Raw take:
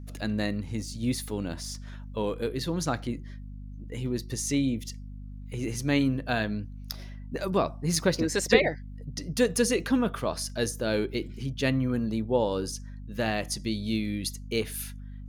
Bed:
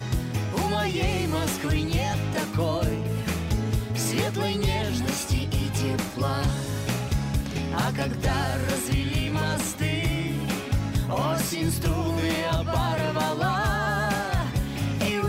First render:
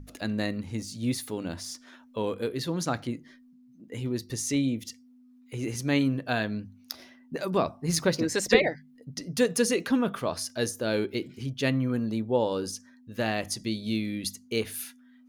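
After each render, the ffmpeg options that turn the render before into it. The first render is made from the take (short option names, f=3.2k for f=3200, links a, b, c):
-af "bandreject=f=50:t=h:w=6,bandreject=f=100:t=h:w=6,bandreject=f=150:t=h:w=6,bandreject=f=200:t=h:w=6"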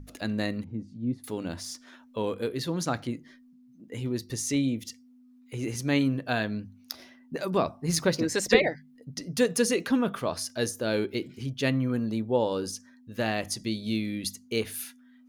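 -filter_complex "[0:a]asettb=1/sr,asplit=3[a][b][c];[a]atrim=end=0.644[d];[b]atrim=start=0.64:end=1.24,asetpts=PTS-STARTPTS,afade=t=in:d=0.004:c=qsin,afade=t=out:st=0.596:d=0.004:c=qsin,bandpass=f=190:t=q:w=0.94[e];[c]atrim=start=1.236[f];[d][e]acrossfade=d=0.004:c1=hsin:c2=qsin[g];[g][f]acrossfade=d=0.004:c1=qsin:c2=hsin"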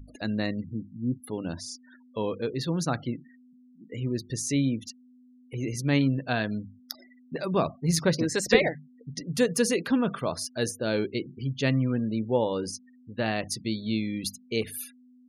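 -af "afftfilt=real='re*gte(hypot(re,im),0.00794)':imag='im*gte(hypot(re,im),0.00794)':win_size=1024:overlap=0.75,adynamicequalizer=threshold=0.00501:dfrequency=150:dqfactor=3:tfrequency=150:tqfactor=3:attack=5:release=100:ratio=0.375:range=3:mode=boostabove:tftype=bell"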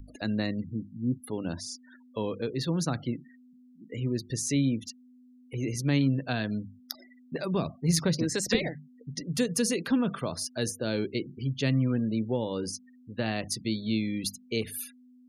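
-filter_complex "[0:a]acrossover=split=310|3000[a][b][c];[b]acompressor=threshold=-31dB:ratio=6[d];[a][d][c]amix=inputs=3:normalize=0"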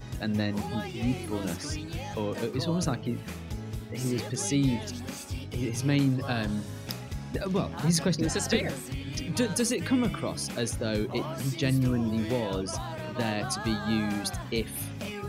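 -filter_complex "[1:a]volume=-11dB[a];[0:a][a]amix=inputs=2:normalize=0"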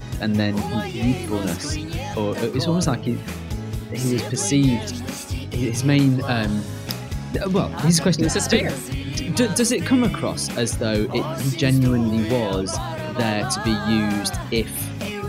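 -af "volume=8dB"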